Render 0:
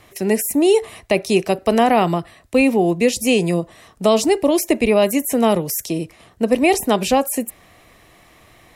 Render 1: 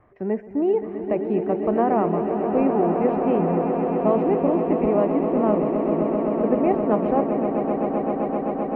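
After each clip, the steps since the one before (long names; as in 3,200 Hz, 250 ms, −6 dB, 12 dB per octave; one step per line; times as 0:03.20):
low-pass filter 1,500 Hz 24 dB per octave
on a send: echo that builds up and dies away 130 ms, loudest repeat 8, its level −10 dB
on the sum: level −6.5 dB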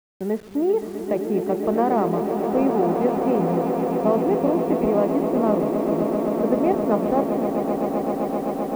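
hold until the input has moved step −40.5 dBFS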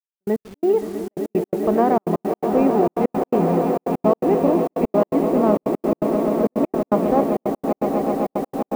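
gate pattern "xx.x.x.xxx" 167 BPM −60 dB
level +3 dB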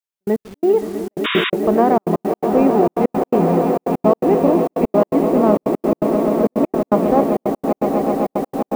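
sound drawn into the spectrogram noise, 0:01.24–0:01.50, 970–3,800 Hz −24 dBFS
level +3 dB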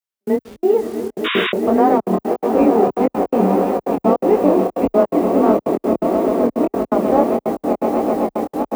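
frequency shifter +21 Hz
chorus effect 1.6 Hz, delay 18.5 ms, depth 7.9 ms
level +3 dB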